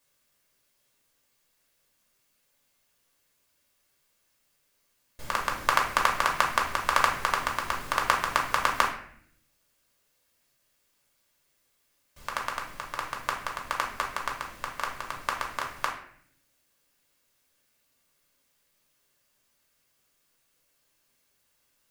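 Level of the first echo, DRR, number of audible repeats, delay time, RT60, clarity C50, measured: no echo, -1.0 dB, no echo, no echo, 0.60 s, 6.5 dB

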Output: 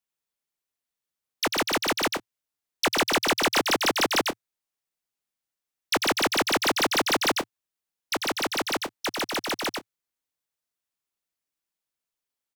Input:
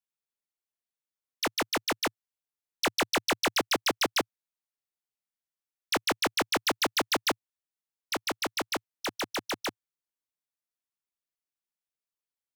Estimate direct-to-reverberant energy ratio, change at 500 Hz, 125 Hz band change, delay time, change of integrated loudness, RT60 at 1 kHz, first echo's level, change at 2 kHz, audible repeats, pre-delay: no reverb, +5.0 dB, +5.0 dB, 96 ms, +4.5 dB, no reverb, -4.5 dB, +5.0 dB, 1, no reverb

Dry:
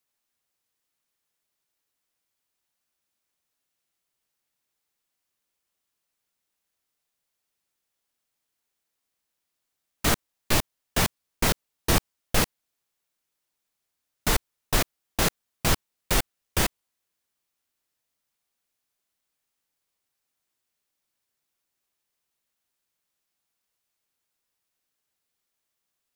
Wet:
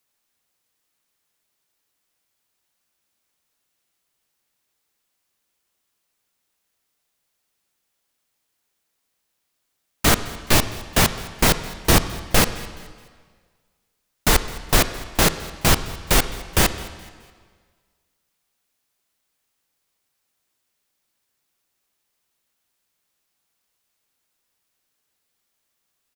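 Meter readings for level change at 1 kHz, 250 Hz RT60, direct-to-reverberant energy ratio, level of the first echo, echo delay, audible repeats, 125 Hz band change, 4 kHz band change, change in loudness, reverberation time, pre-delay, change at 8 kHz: +7.0 dB, 1.6 s, 11.5 dB, -21.5 dB, 212 ms, 2, +7.0 dB, +7.0 dB, +6.5 dB, 1.7 s, 29 ms, +6.5 dB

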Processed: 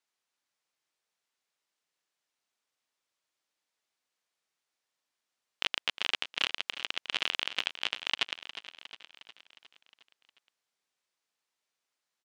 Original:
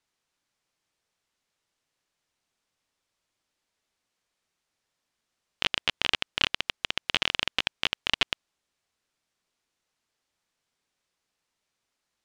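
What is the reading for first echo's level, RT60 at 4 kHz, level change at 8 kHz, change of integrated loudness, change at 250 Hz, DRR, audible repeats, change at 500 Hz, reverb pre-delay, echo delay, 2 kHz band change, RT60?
-13.0 dB, no reverb, -4.0 dB, -4.5 dB, -10.0 dB, no reverb, 5, -6.5 dB, no reverb, 359 ms, -4.5 dB, no reverb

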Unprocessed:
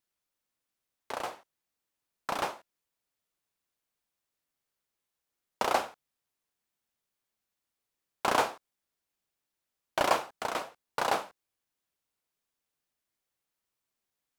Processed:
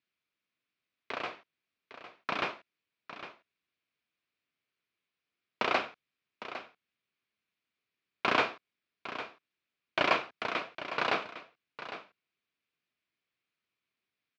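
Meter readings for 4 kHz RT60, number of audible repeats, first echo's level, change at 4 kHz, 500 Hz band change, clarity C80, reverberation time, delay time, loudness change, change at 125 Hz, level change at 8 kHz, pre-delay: no reverb, 1, -12.5 dB, +1.5 dB, -2.0 dB, no reverb, no reverb, 806 ms, -1.5 dB, +0.5 dB, -14.0 dB, no reverb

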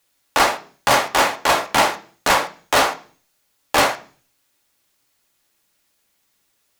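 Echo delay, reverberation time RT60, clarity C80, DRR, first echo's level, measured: no echo, 0.45 s, 20.5 dB, 5.0 dB, no echo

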